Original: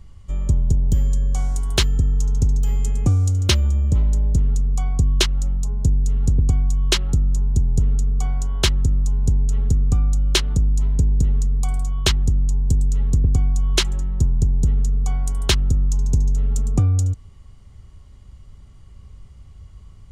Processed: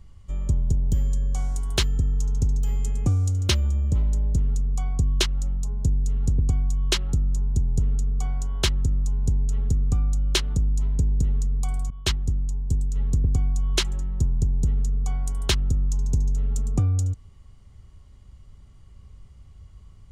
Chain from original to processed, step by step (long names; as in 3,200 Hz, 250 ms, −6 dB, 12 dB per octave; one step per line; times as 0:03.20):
0:11.90–0:12.96: downward expander −14 dBFS
level −4.5 dB